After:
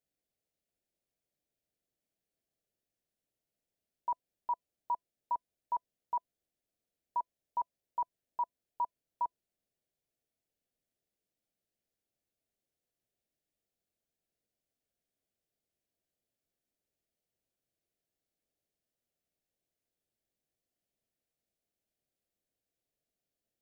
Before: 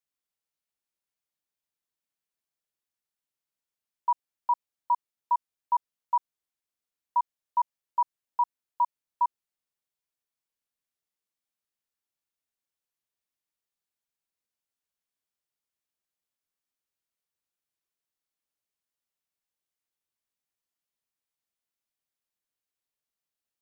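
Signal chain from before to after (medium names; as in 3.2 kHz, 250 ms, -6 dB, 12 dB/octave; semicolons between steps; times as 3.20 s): FFT filter 680 Hz 0 dB, 1 kHz -19 dB, 1.7 kHz -11 dB; trim +8.5 dB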